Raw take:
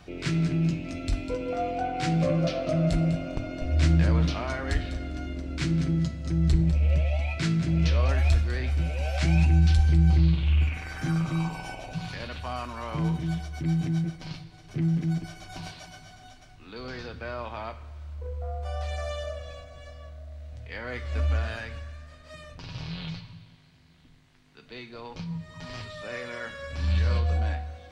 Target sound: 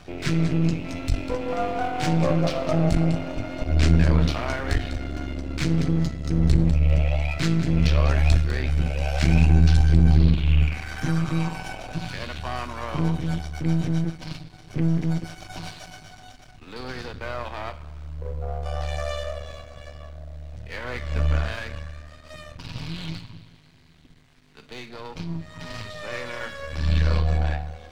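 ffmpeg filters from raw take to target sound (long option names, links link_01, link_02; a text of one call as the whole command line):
ffmpeg -i in.wav -af "aeval=exprs='if(lt(val(0),0),0.251*val(0),val(0))':channel_layout=same,volume=6.5dB" out.wav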